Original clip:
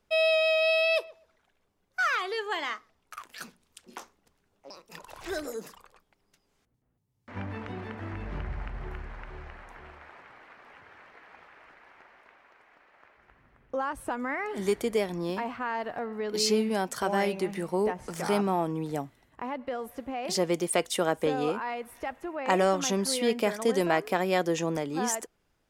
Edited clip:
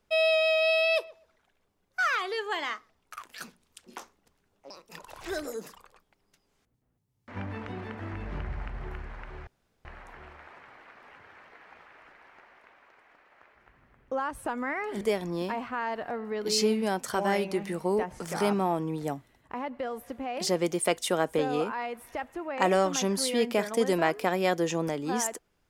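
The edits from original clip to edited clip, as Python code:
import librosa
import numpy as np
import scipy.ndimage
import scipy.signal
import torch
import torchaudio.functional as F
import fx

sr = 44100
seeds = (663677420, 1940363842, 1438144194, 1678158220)

y = fx.edit(x, sr, fx.insert_room_tone(at_s=9.47, length_s=0.38),
    fx.cut(start_s=14.63, length_s=0.26), tone=tone)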